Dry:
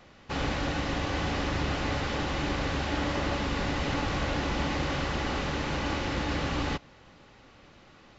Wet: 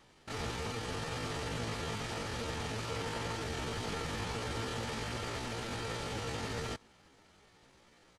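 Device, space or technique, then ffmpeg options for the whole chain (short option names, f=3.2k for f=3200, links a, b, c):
chipmunk voice: -af "asetrate=70004,aresample=44100,atempo=0.629961,volume=-8dB"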